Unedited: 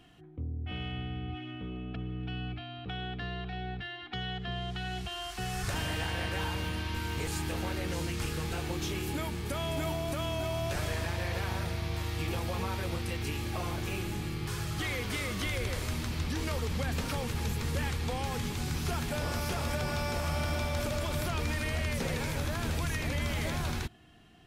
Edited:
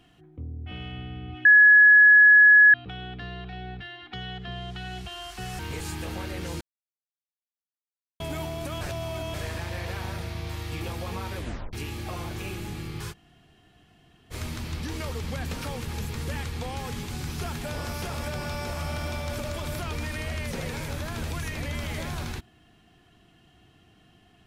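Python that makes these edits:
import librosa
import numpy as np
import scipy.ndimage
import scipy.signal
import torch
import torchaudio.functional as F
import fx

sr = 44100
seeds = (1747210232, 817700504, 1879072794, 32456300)

y = fx.edit(x, sr, fx.bleep(start_s=1.45, length_s=1.29, hz=1690.0, db=-10.5),
    fx.cut(start_s=5.59, length_s=1.47),
    fx.silence(start_s=8.08, length_s=1.59),
    fx.reverse_span(start_s=10.28, length_s=0.53),
    fx.tape_stop(start_s=12.84, length_s=0.36),
    fx.room_tone_fill(start_s=14.59, length_s=1.2, crossfade_s=0.04), tone=tone)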